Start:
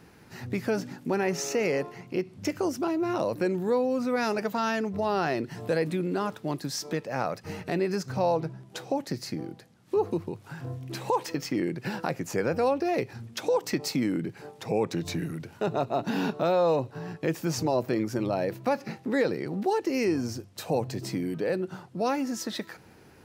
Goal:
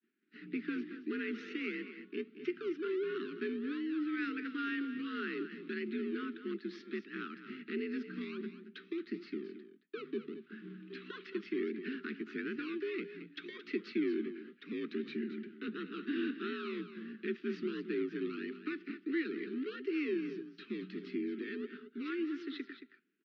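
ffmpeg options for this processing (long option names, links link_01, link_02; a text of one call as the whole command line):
ffmpeg -i in.wav -filter_complex "[0:a]agate=range=-33dB:threshold=-41dB:ratio=3:detection=peak,asplit=2[link_01][link_02];[link_02]acrusher=samples=26:mix=1:aa=0.000001:lfo=1:lforange=15.6:lforate=1.5,volume=-10.5dB[link_03];[link_01][link_03]amix=inputs=2:normalize=0,asuperstop=centerf=650:order=12:qfactor=0.75,aecho=1:1:223:0.266,highpass=frequency=160:width_type=q:width=0.5412,highpass=frequency=160:width_type=q:width=1.307,lowpass=frequency=3600:width_type=q:width=0.5176,lowpass=frequency=3600:width_type=q:width=0.7071,lowpass=frequency=3600:width_type=q:width=1.932,afreqshift=57,volume=-7.5dB" out.wav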